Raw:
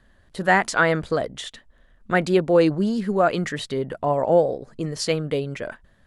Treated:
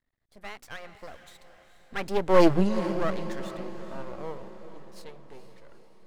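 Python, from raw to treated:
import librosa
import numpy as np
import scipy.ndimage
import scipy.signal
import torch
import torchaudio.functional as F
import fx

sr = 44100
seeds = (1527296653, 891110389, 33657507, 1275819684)

y = fx.doppler_pass(x, sr, speed_mps=28, closest_m=3.1, pass_at_s=2.51)
y = np.maximum(y, 0.0)
y = fx.echo_diffused(y, sr, ms=452, feedback_pct=55, wet_db=-12.0)
y = y * 10.0 ** (7.0 / 20.0)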